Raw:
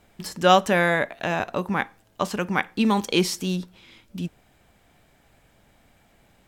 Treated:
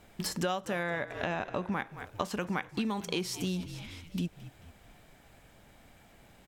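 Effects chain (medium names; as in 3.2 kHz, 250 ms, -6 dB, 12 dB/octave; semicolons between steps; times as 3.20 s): 0.83–1.72 s: distance through air 72 m; frequency-shifting echo 220 ms, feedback 52%, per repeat -47 Hz, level -19 dB; compression 12:1, threshold -30 dBFS, peak gain reduction 19.5 dB; trim +1 dB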